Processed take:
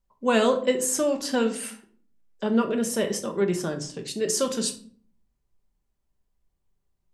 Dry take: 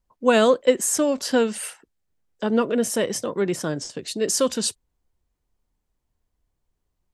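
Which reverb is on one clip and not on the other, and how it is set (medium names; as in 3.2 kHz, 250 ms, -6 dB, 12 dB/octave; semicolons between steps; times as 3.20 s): simulated room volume 490 m³, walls furnished, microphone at 1.2 m; trim -4 dB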